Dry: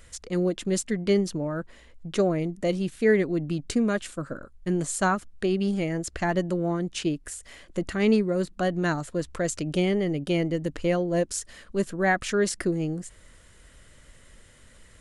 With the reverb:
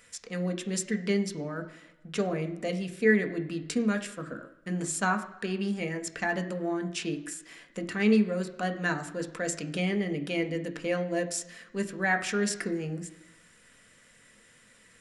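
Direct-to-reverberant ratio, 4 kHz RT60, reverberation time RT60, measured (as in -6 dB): 5.0 dB, 0.95 s, 1.0 s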